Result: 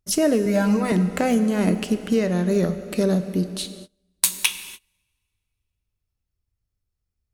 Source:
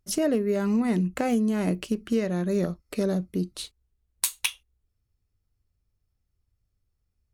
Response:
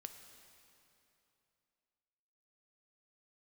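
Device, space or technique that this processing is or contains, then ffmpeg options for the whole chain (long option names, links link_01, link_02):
keyed gated reverb: -filter_complex "[0:a]highshelf=frequency=2100:gain=2,asettb=1/sr,asplit=3[link_01][link_02][link_03];[link_01]atrim=end=0.454[link_04];[link_02]atrim=start=0.45:end=0.92,asetpts=PTS-STARTPTS,afade=type=in:duration=0.004:curve=qsin,afade=type=out:start_time=0.466:duration=0.004:curve=qsin,aecho=1:1:6.3:1,atrim=end_sample=20727[link_05];[link_03]atrim=start=0.916[link_06];[link_04][link_05]acrossfade=duration=0.004:curve1=hsin:curve2=qsin[link_07];[link_07][link_06]acrossfade=duration=0.004:curve1=qsin:curve2=hsin,asplit=3[link_08][link_09][link_10];[1:a]atrim=start_sample=2205[link_11];[link_09][link_11]afir=irnorm=-1:irlink=0[link_12];[link_10]apad=whole_len=323545[link_13];[link_12][link_13]sidechaingate=range=-29dB:threshold=-59dB:ratio=16:detection=peak,volume=12dB[link_14];[link_08][link_14]amix=inputs=2:normalize=0,volume=-5dB"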